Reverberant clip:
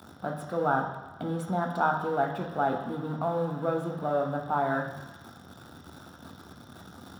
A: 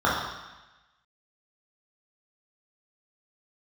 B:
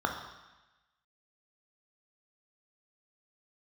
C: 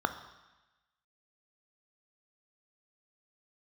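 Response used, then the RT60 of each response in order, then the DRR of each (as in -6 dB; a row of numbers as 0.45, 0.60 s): B; 1.1, 1.1, 1.1 s; -7.0, 2.0, 8.5 dB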